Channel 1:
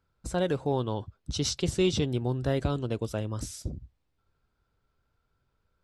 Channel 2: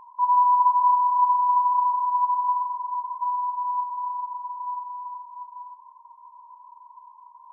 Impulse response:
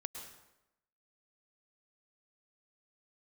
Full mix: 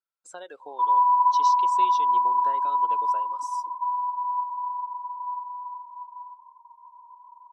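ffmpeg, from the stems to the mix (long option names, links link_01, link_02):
-filter_complex "[0:a]highpass=770,acompressor=threshold=-37dB:ratio=4,volume=0.5dB[link_01];[1:a]lowpass=1000,adelay=600,volume=2dB[link_02];[link_01][link_02]amix=inputs=2:normalize=0,afftdn=noise_reduction=18:noise_floor=-41"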